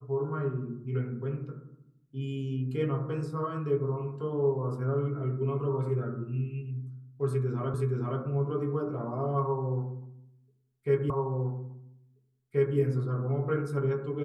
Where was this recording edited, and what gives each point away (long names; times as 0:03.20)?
0:07.74: the same again, the last 0.47 s
0:11.10: the same again, the last 1.68 s